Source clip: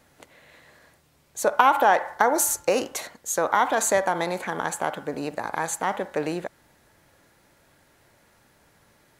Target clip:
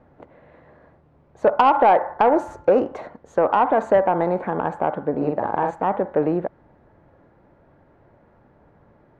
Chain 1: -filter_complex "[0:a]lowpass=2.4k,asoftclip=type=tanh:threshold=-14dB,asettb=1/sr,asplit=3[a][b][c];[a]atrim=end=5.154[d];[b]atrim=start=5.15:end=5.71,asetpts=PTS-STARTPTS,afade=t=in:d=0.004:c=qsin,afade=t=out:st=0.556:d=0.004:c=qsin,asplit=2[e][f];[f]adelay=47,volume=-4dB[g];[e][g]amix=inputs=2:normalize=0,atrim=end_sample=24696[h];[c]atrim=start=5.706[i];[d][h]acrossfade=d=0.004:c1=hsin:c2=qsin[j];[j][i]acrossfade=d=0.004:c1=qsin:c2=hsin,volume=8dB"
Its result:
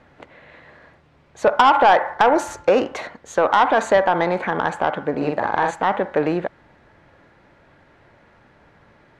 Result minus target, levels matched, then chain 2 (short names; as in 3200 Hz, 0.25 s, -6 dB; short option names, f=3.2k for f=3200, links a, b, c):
2000 Hz band +7.0 dB
-filter_complex "[0:a]lowpass=880,asoftclip=type=tanh:threshold=-14dB,asettb=1/sr,asplit=3[a][b][c];[a]atrim=end=5.154[d];[b]atrim=start=5.15:end=5.71,asetpts=PTS-STARTPTS,afade=t=in:d=0.004:c=qsin,afade=t=out:st=0.556:d=0.004:c=qsin,asplit=2[e][f];[f]adelay=47,volume=-4dB[g];[e][g]amix=inputs=2:normalize=0,atrim=end_sample=24696[h];[c]atrim=start=5.706[i];[d][h]acrossfade=d=0.004:c1=hsin:c2=qsin[j];[j][i]acrossfade=d=0.004:c1=qsin:c2=hsin,volume=8dB"